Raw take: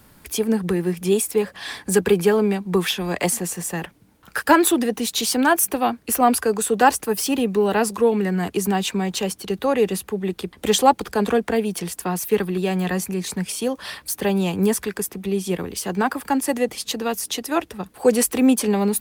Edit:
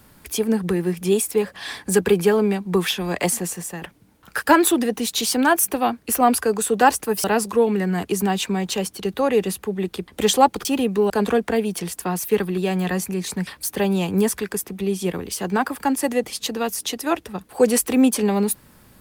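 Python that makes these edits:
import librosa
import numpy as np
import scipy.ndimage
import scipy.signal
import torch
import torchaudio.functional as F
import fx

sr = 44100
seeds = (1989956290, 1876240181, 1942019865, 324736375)

y = fx.edit(x, sr, fx.fade_out_to(start_s=3.46, length_s=0.36, floor_db=-7.5),
    fx.move(start_s=7.24, length_s=0.45, to_s=11.1),
    fx.cut(start_s=13.47, length_s=0.45), tone=tone)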